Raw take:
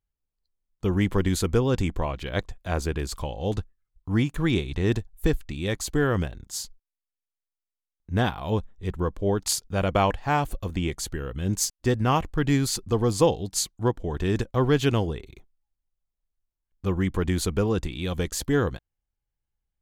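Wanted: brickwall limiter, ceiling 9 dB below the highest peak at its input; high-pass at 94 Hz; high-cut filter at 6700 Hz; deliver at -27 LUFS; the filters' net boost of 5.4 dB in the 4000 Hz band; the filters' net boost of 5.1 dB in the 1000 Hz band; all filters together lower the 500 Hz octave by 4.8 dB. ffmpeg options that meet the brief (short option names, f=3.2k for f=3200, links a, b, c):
-af "highpass=94,lowpass=6.7k,equalizer=f=500:t=o:g=-8,equalizer=f=1k:t=o:g=8.5,equalizer=f=4k:t=o:g=7,volume=1dB,alimiter=limit=-13.5dB:level=0:latency=1"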